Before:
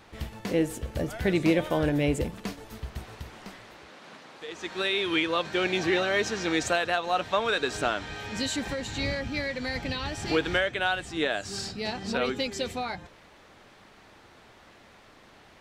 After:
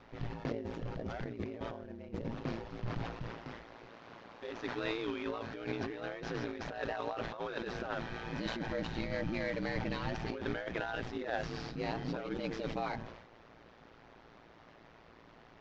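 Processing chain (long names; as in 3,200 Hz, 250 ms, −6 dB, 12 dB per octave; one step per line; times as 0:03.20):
variable-slope delta modulation 32 kbit/s
low-pass filter 1,400 Hz 6 dB per octave
compressor whose output falls as the input rises −32 dBFS, ratio −0.5
ring modulation 57 Hz
level that may fall only so fast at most 61 dB per second
level −3 dB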